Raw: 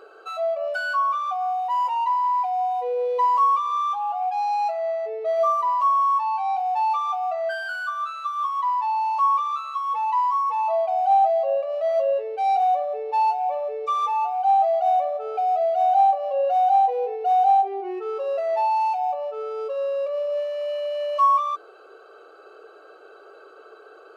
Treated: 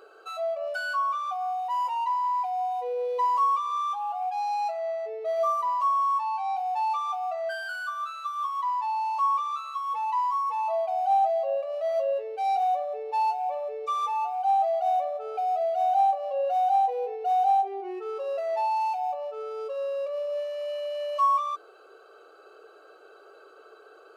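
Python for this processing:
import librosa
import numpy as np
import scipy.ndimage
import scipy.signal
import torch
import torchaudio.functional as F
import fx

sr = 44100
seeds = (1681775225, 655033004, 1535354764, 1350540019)

y = fx.high_shelf(x, sr, hz=5100.0, db=8.0)
y = F.gain(torch.from_numpy(y), -5.0).numpy()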